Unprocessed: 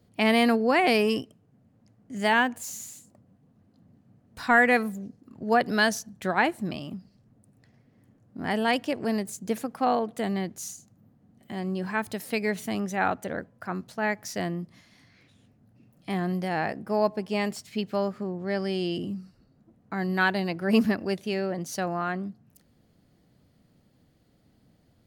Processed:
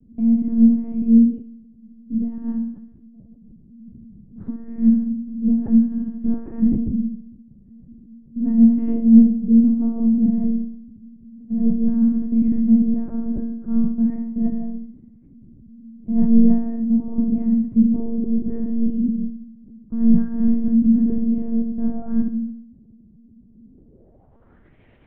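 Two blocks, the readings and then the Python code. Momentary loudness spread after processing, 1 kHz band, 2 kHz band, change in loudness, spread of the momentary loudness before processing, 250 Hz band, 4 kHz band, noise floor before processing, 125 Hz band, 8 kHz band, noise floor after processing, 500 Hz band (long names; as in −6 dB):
13 LU, below −20 dB, below −30 dB, +8.0 dB, 15 LU, +14.0 dB, below −40 dB, −64 dBFS, +5.5 dB, below −35 dB, −51 dBFS, −9.5 dB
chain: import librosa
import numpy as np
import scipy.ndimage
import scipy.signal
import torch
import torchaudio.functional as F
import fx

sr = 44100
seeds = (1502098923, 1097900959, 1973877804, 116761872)

y = fx.spec_trails(x, sr, decay_s=0.65)
y = fx.dynamic_eq(y, sr, hz=1900.0, q=1.1, threshold_db=-35.0, ratio=4.0, max_db=5)
y = fx.over_compress(y, sr, threshold_db=-25.0, ratio=-1.0)
y = fx.filter_sweep_lowpass(y, sr, from_hz=230.0, to_hz=2300.0, start_s=23.58, end_s=24.76, q=3.5)
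y = fx.room_flutter(y, sr, wall_m=4.7, rt60_s=0.6)
y = fx.lpc_monotone(y, sr, seeds[0], pitch_hz=230.0, order=8)
y = y * 10.0 ** (1.0 / 20.0)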